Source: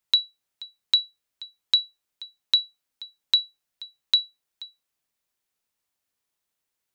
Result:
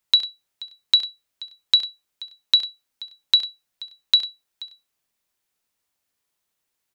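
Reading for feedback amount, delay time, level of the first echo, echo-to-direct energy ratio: repeats not evenly spaced, 67 ms, −14.5 dB, −11.0 dB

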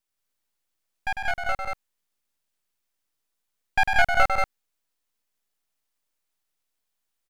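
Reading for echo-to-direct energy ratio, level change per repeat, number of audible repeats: −1.0 dB, repeats not evenly spaced, 2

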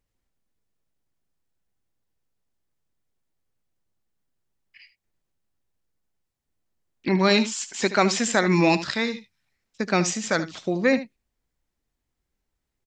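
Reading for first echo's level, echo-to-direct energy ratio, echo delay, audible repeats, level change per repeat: −13.5 dB, −13.5 dB, 75 ms, 1, repeats not evenly spaced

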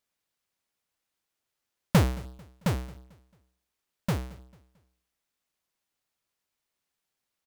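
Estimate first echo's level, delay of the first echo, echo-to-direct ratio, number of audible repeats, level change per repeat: −23.0 dB, 222 ms, −22.5 dB, 2, −8.0 dB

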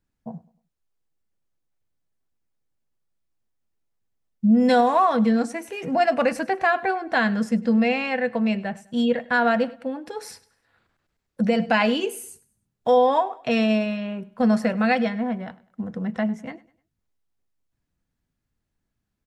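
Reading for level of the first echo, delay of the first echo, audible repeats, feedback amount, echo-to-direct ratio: −21.0 dB, 101 ms, 2, 36%, −20.5 dB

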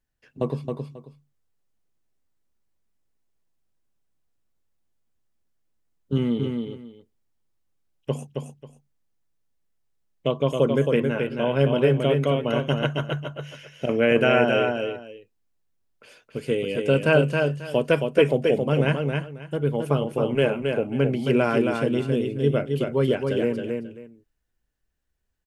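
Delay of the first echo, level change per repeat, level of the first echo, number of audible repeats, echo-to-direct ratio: 270 ms, −13.5 dB, −4.5 dB, 2, −4.5 dB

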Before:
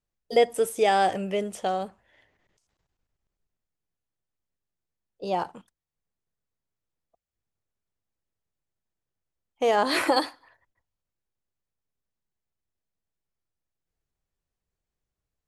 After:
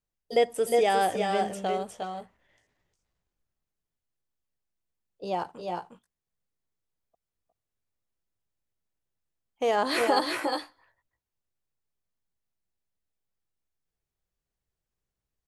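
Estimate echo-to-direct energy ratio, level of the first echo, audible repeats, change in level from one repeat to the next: −3.5 dB, −5.0 dB, 1, repeats not evenly spaced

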